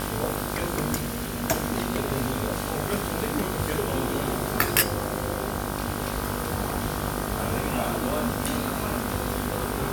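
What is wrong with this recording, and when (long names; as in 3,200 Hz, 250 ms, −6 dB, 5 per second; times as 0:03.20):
mains buzz 50 Hz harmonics 32 −32 dBFS
0:00.96–0:01.44: clipping −25 dBFS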